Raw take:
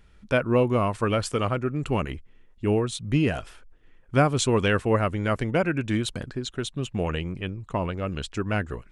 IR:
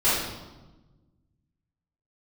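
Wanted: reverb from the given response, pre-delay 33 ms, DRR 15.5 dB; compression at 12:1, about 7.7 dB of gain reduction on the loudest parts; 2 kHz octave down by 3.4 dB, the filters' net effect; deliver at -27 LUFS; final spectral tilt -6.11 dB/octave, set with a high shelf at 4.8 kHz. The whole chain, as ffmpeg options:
-filter_complex "[0:a]equalizer=f=2000:t=o:g=-4,highshelf=f=4800:g=-5.5,acompressor=threshold=0.0708:ratio=12,asplit=2[s0][s1];[1:a]atrim=start_sample=2205,adelay=33[s2];[s1][s2]afir=irnorm=-1:irlink=0,volume=0.0266[s3];[s0][s3]amix=inputs=2:normalize=0,volume=1.41"

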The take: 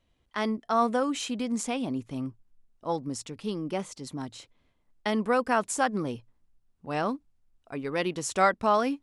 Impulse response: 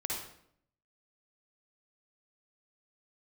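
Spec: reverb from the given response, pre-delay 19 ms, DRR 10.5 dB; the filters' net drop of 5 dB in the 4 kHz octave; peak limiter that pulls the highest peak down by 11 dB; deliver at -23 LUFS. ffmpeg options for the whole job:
-filter_complex "[0:a]equalizer=f=4000:t=o:g=-7,alimiter=limit=0.0841:level=0:latency=1,asplit=2[s0][s1];[1:a]atrim=start_sample=2205,adelay=19[s2];[s1][s2]afir=irnorm=-1:irlink=0,volume=0.2[s3];[s0][s3]amix=inputs=2:normalize=0,volume=2.99"

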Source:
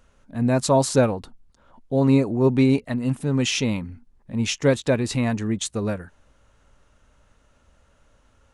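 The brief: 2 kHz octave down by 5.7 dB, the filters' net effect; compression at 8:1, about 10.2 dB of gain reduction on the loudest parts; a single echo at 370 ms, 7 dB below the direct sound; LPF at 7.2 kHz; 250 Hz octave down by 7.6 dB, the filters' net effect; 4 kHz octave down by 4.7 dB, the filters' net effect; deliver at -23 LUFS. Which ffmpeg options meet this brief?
-af "lowpass=7200,equalizer=f=250:t=o:g=-8.5,equalizer=f=2000:t=o:g=-6.5,equalizer=f=4000:t=o:g=-3.5,acompressor=threshold=0.0501:ratio=8,aecho=1:1:370:0.447,volume=2.82"

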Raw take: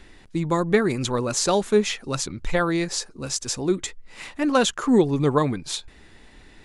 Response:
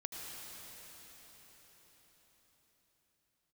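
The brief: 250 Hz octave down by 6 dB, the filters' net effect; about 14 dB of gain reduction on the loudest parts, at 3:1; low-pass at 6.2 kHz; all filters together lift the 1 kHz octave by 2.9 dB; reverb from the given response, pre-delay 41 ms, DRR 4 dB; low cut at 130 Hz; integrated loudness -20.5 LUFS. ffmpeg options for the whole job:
-filter_complex "[0:a]highpass=130,lowpass=6200,equalizer=f=250:t=o:g=-8,equalizer=f=1000:t=o:g=4,acompressor=threshold=0.0178:ratio=3,asplit=2[s0][s1];[1:a]atrim=start_sample=2205,adelay=41[s2];[s1][s2]afir=irnorm=-1:irlink=0,volume=0.631[s3];[s0][s3]amix=inputs=2:normalize=0,volume=5.31"

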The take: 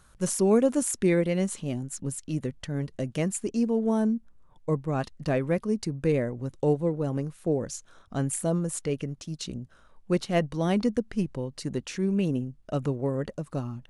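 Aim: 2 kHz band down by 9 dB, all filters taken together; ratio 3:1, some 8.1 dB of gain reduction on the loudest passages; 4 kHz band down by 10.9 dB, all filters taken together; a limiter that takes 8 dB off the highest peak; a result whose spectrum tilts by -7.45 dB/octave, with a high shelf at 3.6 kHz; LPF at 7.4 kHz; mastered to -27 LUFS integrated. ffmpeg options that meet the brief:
-af "lowpass=7400,equalizer=f=2000:t=o:g=-7.5,highshelf=f=3600:g=-8,equalizer=f=4000:t=o:g=-6,acompressor=threshold=0.0355:ratio=3,volume=3.35,alimiter=limit=0.141:level=0:latency=1"

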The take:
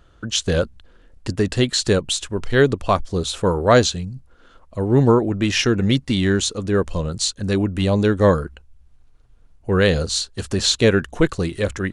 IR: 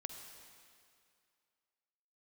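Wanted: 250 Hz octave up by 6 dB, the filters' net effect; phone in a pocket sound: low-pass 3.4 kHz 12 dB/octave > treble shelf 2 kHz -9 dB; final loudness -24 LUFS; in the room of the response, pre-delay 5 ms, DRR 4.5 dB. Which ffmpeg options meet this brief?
-filter_complex "[0:a]equalizer=f=250:t=o:g=8,asplit=2[s0][s1];[1:a]atrim=start_sample=2205,adelay=5[s2];[s1][s2]afir=irnorm=-1:irlink=0,volume=0.794[s3];[s0][s3]amix=inputs=2:normalize=0,lowpass=3400,highshelf=f=2000:g=-9,volume=0.376"

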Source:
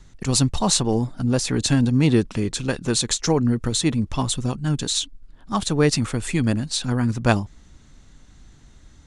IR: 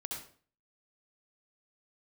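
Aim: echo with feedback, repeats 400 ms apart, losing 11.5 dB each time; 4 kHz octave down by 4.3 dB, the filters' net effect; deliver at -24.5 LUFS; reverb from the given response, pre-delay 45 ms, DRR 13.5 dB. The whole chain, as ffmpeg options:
-filter_complex "[0:a]equalizer=f=4000:t=o:g=-5,aecho=1:1:400|800|1200:0.266|0.0718|0.0194,asplit=2[s0][s1];[1:a]atrim=start_sample=2205,adelay=45[s2];[s1][s2]afir=irnorm=-1:irlink=0,volume=0.211[s3];[s0][s3]amix=inputs=2:normalize=0,volume=0.75"

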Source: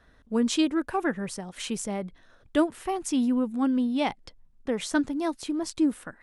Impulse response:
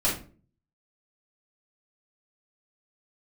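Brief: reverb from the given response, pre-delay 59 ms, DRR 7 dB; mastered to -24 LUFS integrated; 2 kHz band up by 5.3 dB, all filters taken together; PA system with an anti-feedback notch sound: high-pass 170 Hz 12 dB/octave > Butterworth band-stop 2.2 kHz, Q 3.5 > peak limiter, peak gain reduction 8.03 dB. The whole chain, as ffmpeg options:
-filter_complex "[0:a]equalizer=f=2000:t=o:g=9,asplit=2[s0][s1];[1:a]atrim=start_sample=2205,adelay=59[s2];[s1][s2]afir=irnorm=-1:irlink=0,volume=0.126[s3];[s0][s3]amix=inputs=2:normalize=0,highpass=170,asuperstop=centerf=2200:order=8:qfactor=3.5,volume=1.68,alimiter=limit=0.2:level=0:latency=1"

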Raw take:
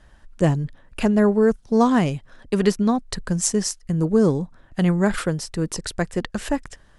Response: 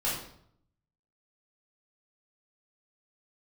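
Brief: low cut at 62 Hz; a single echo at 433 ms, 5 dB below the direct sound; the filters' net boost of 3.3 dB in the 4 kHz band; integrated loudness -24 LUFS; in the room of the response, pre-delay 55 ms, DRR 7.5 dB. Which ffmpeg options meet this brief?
-filter_complex "[0:a]highpass=62,equalizer=f=4000:t=o:g=4.5,aecho=1:1:433:0.562,asplit=2[s0][s1];[1:a]atrim=start_sample=2205,adelay=55[s2];[s1][s2]afir=irnorm=-1:irlink=0,volume=0.168[s3];[s0][s3]amix=inputs=2:normalize=0,volume=0.631"

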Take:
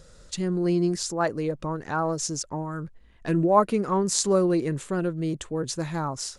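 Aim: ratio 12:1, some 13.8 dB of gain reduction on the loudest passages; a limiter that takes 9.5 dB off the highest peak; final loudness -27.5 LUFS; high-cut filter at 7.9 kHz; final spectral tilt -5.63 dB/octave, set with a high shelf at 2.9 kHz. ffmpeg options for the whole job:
-af "lowpass=7900,highshelf=f=2900:g=-8,acompressor=threshold=0.0398:ratio=12,volume=2.37,alimiter=limit=0.126:level=0:latency=1"

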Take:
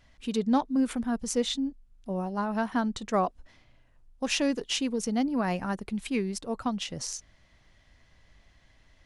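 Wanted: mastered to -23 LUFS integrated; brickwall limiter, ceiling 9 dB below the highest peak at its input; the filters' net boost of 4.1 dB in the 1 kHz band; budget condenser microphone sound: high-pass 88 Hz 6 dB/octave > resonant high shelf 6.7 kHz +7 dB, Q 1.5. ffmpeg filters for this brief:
-af "equalizer=f=1000:t=o:g=5.5,alimiter=limit=0.0944:level=0:latency=1,highpass=f=88:p=1,highshelf=f=6700:t=q:w=1.5:g=7,volume=2.51"

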